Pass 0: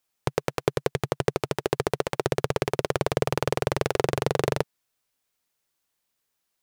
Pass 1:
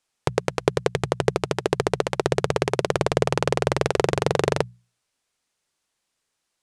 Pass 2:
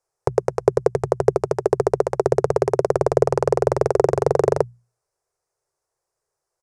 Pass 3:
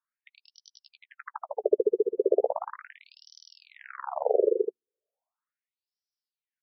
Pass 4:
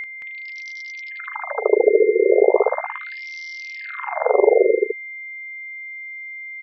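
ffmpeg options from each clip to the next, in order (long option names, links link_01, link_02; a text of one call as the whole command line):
ffmpeg -i in.wav -af "lowpass=frequency=10000:width=0.5412,lowpass=frequency=10000:width=1.3066,bandreject=frequency=60:width_type=h:width=6,bandreject=frequency=120:width_type=h:width=6,bandreject=frequency=180:width_type=h:width=6,volume=3.5dB" out.wav
ffmpeg -i in.wav -af "firequalizer=gain_entry='entry(140,0);entry(230,-23);entry(380,5);entry(3200,-22);entry(5200,-6)':delay=0.05:min_phase=1,volume=1.5dB" out.wav
ffmpeg -i in.wav -af "aecho=1:1:14|76:0.168|0.531,afftfilt=real='re*between(b*sr/1024,340*pow(4300/340,0.5+0.5*sin(2*PI*0.37*pts/sr))/1.41,340*pow(4300/340,0.5+0.5*sin(2*PI*0.37*pts/sr))*1.41)':imag='im*between(b*sr/1024,340*pow(4300/340,0.5+0.5*sin(2*PI*0.37*pts/sr))/1.41,340*pow(4300/340,0.5+0.5*sin(2*PI*0.37*pts/sr))*1.41)':win_size=1024:overlap=0.75,volume=-5dB" out.wav
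ffmpeg -i in.wav -filter_complex "[0:a]aeval=exprs='val(0)+0.0224*sin(2*PI*2100*n/s)':channel_layout=same,asplit=2[link_01][link_02];[link_02]aecho=0:1:37.9|221.6:0.631|1[link_03];[link_01][link_03]amix=inputs=2:normalize=0,volume=6.5dB" out.wav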